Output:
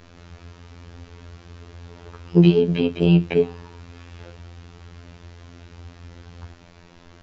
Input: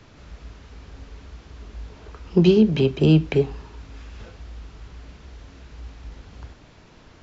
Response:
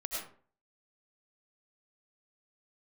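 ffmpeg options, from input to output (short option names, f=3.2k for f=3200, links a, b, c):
-filter_complex "[0:a]afftfilt=real='hypot(re,im)*cos(PI*b)':imag='0':win_size=2048:overlap=0.75,acrossover=split=3800[a][b];[b]acompressor=threshold=-53dB:ratio=4:attack=1:release=60[c];[a][c]amix=inputs=2:normalize=0,volume=4.5dB"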